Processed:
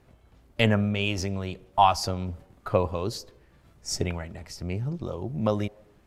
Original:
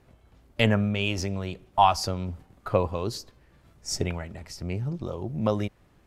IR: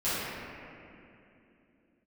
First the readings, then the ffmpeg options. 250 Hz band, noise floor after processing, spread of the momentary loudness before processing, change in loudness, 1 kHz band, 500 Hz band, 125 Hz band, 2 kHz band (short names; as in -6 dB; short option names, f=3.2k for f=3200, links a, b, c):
0.0 dB, -60 dBFS, 15 LU, 0.0 dB, 0.0 dB, 0.0 dB, 0.0 dB, 0.0 dB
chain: -filter_complex "[0:a]asplit=2[a][b];[b]asuperpass=centerf=550:order=4:qfactor=1.1[c];[1:a]atrim=start_sample=2205,afade=t=out:st=0.43:d=0.01,atrim=end_sample=19404[d];[c][d]afir=irnorm=-1:irlink=0,volume=-32.5dB[e];[a][e]amix=inputs=2:normalize=0"